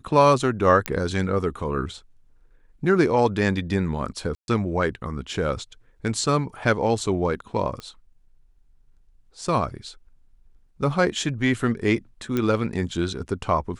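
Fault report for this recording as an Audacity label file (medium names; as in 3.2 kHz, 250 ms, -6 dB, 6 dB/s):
0.860000	0.860000	pop -7 dBFS
4.350000	4.480000	dropout 131 ms
7.800000	7.800000	pop -22 dBFS
12.370000	12.370000	pop -12 dBFS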